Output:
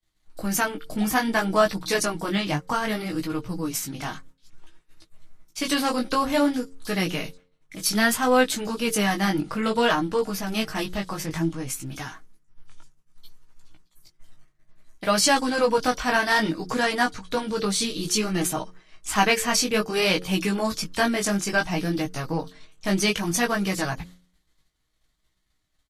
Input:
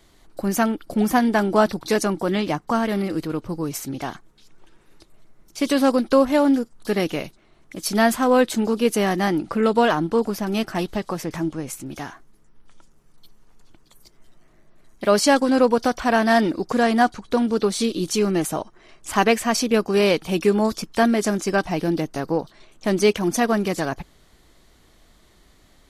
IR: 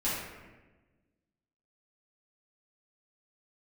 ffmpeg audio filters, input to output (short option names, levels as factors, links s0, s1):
-af "flanger=delay=15.5:depth=5.2:speed=0.59,agate=range=0.0224:threshold=0.00631:ratio=3:detection=peak,equalizer=f=440:w=0.51:g=-9,aecho=1:1:6.4:0.35,bandreject=f=90:t=h:w=4,bandreject=f=180:t=h:w=4,bandreject=f=270:t=h:w=4,bandreject=f=360:t=h:w=4,bandreject=f=450:t=h:w=4,bandreject=f=540:t=h:w=4,volume=1.88"